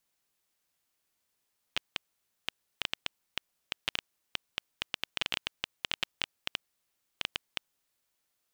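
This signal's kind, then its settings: random clicks 6.8/s -11.5 dBFS 5.96 s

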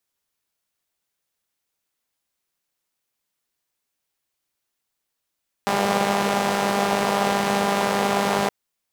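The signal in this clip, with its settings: four-cylinder engine model, steady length 2.82 s, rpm 6000, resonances 220/470/700 Hz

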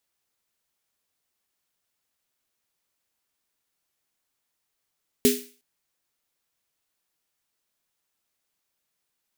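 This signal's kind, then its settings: snare drum length 0.36 s, tones 250 Hz, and 410 Hz, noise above 2000 Hz, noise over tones -4.5 dB, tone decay 0.33 s, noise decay 0.41 s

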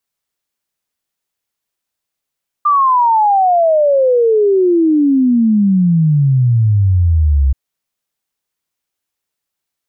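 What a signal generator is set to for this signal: log sweep 1200 Hz -> 65 Hz 4.88 s -8 dBFS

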